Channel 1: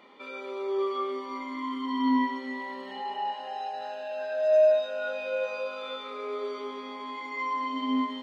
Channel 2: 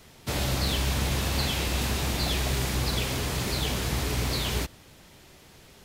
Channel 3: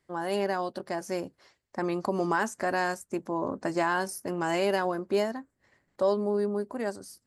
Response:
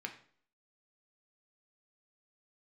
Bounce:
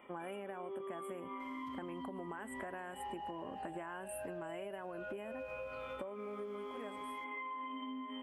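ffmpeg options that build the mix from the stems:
-filter_complex "[0:a]acompressor=threshold=-29dB:ratio=6,volume=-4dB[a];[1:a]acrossover=split=2500[b][c];[c]acompressor=threshold=-46dB:ratio=4:attack=1:release=60[d];[b][d]amix=inputs=2:normalize=0,alimiter=level_in=2.5dB:limit=-24dB:level=0:latency=1,volume=-2.5dB,acompressor=threshold=-39dB:ratio=3,adelay=1400,volume=-16dB[e];[2:a]volume=-3.5dB,afade=t=out:st=6.03:d=0.21:silence=0.375837,asplit=2[f][g];[g]apad=whole_len=319370[h];[e][h]sidechaincompress=threshold=-35dB:ratio=8:attack=7.6:release=258[i];[a][f]amix=inputs=2:normalize=0,asuperstop=centerf=5100:order=20:qfactor=1.2,acompressor=threshold=-33dB:ratio=6,volume=0dB[j];[i][j]amix=inputs=2:normalize=0,acompressor=threshold=-41dB:ratio=6"

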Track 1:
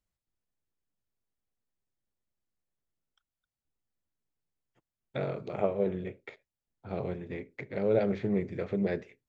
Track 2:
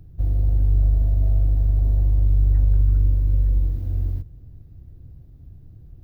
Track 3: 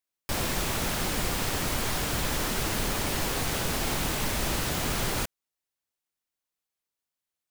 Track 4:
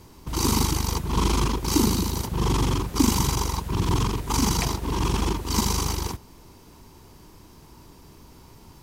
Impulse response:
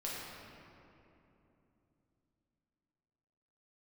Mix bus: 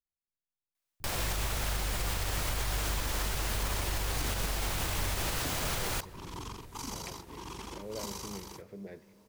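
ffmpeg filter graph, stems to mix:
-filter_complex "[0:a]volume=-16dB,asplit=2[a][b];[b]volume=-16.5dB[c];[1:a]acompressor=threshold=-18dB:ratio=6,adelay=1000,volume=-9dB[d];[2:a]equalizer=f=250:w=1.2:g=-7.5,adelay=750,volume=0dB,asplit=2[e][f];[f]volume=-23.5dB[g];[3:a]lowshelf=f=240:g=-10.5,acrusher=bits=9:mix=0:aa=0.000001,adelay=2450,volume=-14.5dB[h];[4:a]atrim=start_sample=2205[i];[c][g]amix=inputs=2:normalize=0[j];[j][i]afir=irnorm=-1:irlink=0[k];[a][d][e][h][k]amix=inputs=5:normalize=0,alimiter=limit=-22.5dB:level=0:latency=1:release=138"

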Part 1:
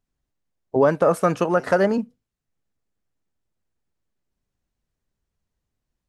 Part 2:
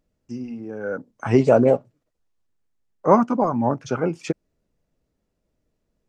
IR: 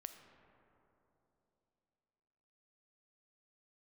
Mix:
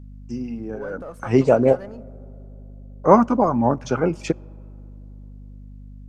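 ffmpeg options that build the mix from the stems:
-filter_complex "[0:a]aeval=exprs='if(lt(val(0),0),0.708*val(0),val(0))':c=same,volume=-17.5dB,asplit=2[a][b];[1:a]aeval=exprs='val(0)+0.00891*(sin(2*PI*50*n/s)+sin(2*PI*2*50*n/s)/2+sin(2*PI*3*50*n/s)/3+sin(2*PI*4*50*n/s)/4+sin(2*PI*5*50*n/s)/5)':c=same,volume=1.5dB,asplit=2[c][d];[d]volume=-15dB[e];[b]apad=whole_len=268301[f];[c][f]sidechaincompress=threshold=-39dB:ratio=8:attack=16:release=232[g];[2:a]atrim=start_sample=2205[h];[e][h]afir=irnorm=-1:irlink=0[i];[a][g][i]amix=inputs=3:normalize=0"

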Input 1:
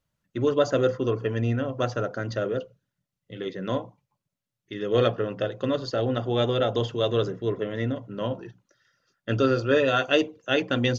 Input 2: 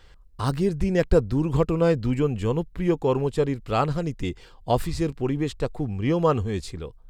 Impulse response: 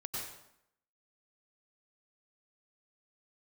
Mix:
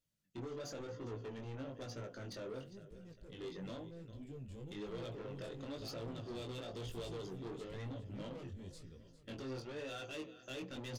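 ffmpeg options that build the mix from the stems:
-filter_complex "[0:a]lowshelf=f=180:g=-9.5,alimiter=limit=-18.5dB:level=0:latency=1:release=18,acompressor=threshold=-28dB:ratio=3,volume=0.5dB,asplit=2[a][b];[b]volume=-18.5dB[c];[1:a]asoftclip=type=tanh:threshold=-20.5dB,adelay=2100,volume=-14dB,afade=t=in:st=3.85:d=0.65:silence=0.354813,asplit=2[d][e];[e]volume=-15.5dB[f];[c][f]amix=inputs=2:normalize=0,aecho=0:1:404|808|1212|1616|2020|2424:1|0.41|0.168|0.0689|0.0283|0.0116[g];[a][d][g]amix=inputs=3:normalize=0,equalizer=f=1k:w=0.54:g=-13,asoftclip=type=tanh:threshold=-38.5dB,flanger=delay=17.5:depth=5.7:speed=1"

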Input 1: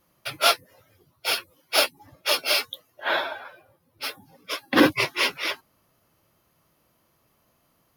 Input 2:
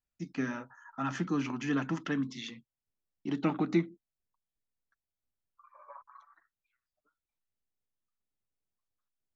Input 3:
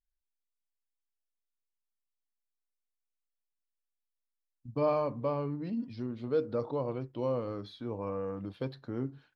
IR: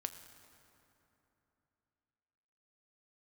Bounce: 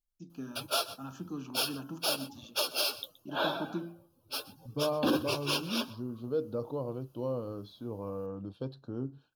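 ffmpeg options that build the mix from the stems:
-filter_complex "[0:a]adelay=300,volume=-2dB,asplit=2[a][b];[b]volume=-20.5dB[c];[1:a]bandreject=f=56.46:t=h:w=4,bandreject=f=112.92:t=h:w=4,bandreject=f=169.38:t=h:w=4,bandreject=f=225.84:t=h:w=4,bandreject=f=282.3:t=h:w=4,bandreject=f=338.76:t=h:w=4,bandreject=f=395.22:t=h:w=4,bandreject=f=451.68:t=h:w=4,bandreject=f=508.14:t=h:w=4,bandreject=f=564.6:t=h:w=4,bandreject=f=621.06:t=h:w=4,bandreject=f=677.52:t=h:w=4,bandreject=f=733.98:t=h:w=4,bandreject=f=790.44:t=h:w=4,bandreject=f=846.9:t=h:w=4,bandreject=f=903.36:t=h:w=4,bandreject=f=959.82:t=h:w=4,bandreject=f=1.01628k:t=h:w=4,bandreject=f=1.07274k:t=h:w=4,bandreject=f=1.1292k:t=h:w=4,bandreject=f=1.18566k:t=h:w=4,bandreject=f=1.24212k:t=h:w=4,bandreject=f=1.29858k:t=h:w=4,bandreject=f=1.35504k:t=h:w=4,bandreject=f=1.4115k:t=h:w=4,bandreject=f=1.46796k:t=h:w=4,bandreject=f=1.52442k:t=h:w=4,bandreject=f=1.58088k:t=h:w=4,bandreject=f=1.63734k:t=h:w=4,volume=-7dB[d];[2:a]volume=-1dB[e];[c]aecho=0:1:124:1[f];[a][d][e][f]amix=inputs=4:normalize=0,asuperstop=centerf=2000:order=4:qfactor=1.9,equalizer=f=1.7k:w=0.44:g=-4.5,alimiter=limit=-18.5dB:level=0:latency=1:release=132"

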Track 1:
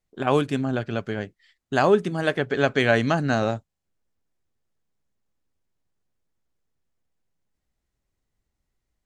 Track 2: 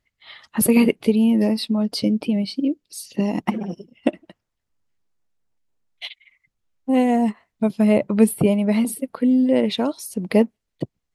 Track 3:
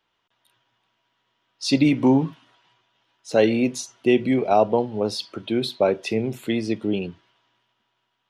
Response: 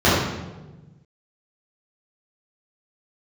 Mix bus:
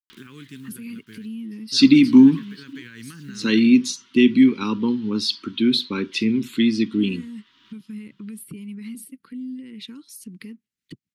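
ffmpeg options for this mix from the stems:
-filter_complex "[0:a]acrusher=bits=7:mix=0:aa=0.000001,volume=-12.5dB[a];[1:a]adelay=100,volume=-12dB[b];[2:a]equalizer=f=125:t=o:w=1:g=-6,equalizer=f=250:t=o:w=1:g=12,equalizer=f=1k:t=o:w=1:g=12,equalizer=f=4k:t=o:w=1:g=9,adelay=100,volume=-1dB[c];[a][b]amix=inputs=2:normalize=0,highpass=140,alimiter=level_in=1.5dB:limit=-24dB:level=0:latency=1:release=78,volume=-1.5dB,volume=0dB[d];[c][d]amix=inputs=2:normalize=0,acompressor=mode=upward:threshold=-31dB:ratio=2.5,asuperstop=centerf=670:order=4:qfactor=0.53"

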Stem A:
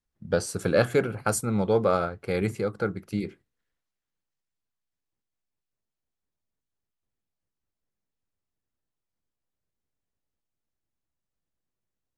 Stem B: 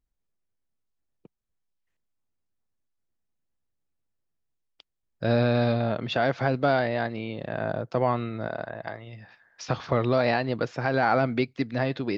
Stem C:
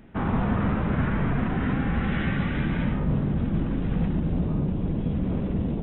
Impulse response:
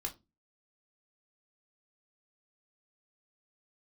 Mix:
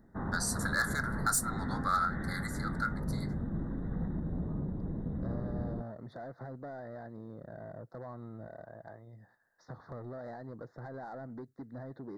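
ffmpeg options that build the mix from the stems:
-filter_complex "[0:a]highpass=f=1.2k:w=0.5412,highpass=f=1.2k:w=1.3066,asoftclip=type=hard:threshold=-25.5dB,volume=1dB,asplit=3[a][b][c];[b]volume=-7dB[d];[1:a]lowpass=f=1k:p=1,acompressor=threshold=-27dB:ratio=4,asoftclip=type=tanh:threshold=-29dB,volume=-9dB[e];[2:a]volume=-10.5dB[f];[c]apad=whole_len=256885[g];[f][g]sidechaincompress=threshold=-36dB:ratio=8:attack=34:release=122[h];[3:a]atrim=start_sample=2205[i];[d][i]afir=irnorm=-1:irlink=0[j];[a][e][h][j]amix=inputs=4:normalize=0,asuperstop=centerf=2700:order=12:qfactor=1.6,equalizer=f=4.8k:t=o:w=1.6:g=-4"

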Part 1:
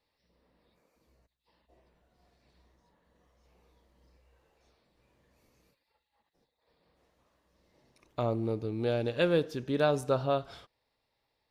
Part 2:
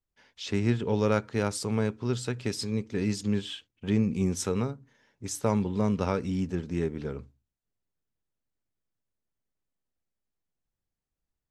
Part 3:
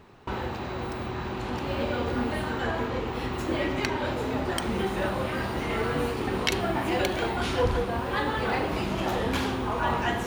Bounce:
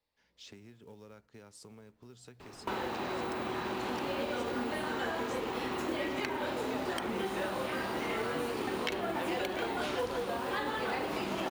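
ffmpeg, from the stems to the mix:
-filter_complex "[0:a]volume=-6.5dB[a];[1:a]acompressor=threshold=-33dB:ratio=20,highshelf=f=4.7k:g=4,volume=-14dB[b];[2:a]adelay=2400,volume=2dB[c];[a][b][c]amix=inputs=3:normalize=0,acrossover=split=190|3400[d][e][f];[d]acompressor=threshold=-59dB:ratio=4[g];[e]acompressor=threshold=-33dB:ratio=4[h];[f]acompressor=threshold=-49dB:ratio=4[i];[g][h][i]amix=inputs=3:normalize=0,acrusher=bits=6:mode=log:mix=0:aa=0.000001"

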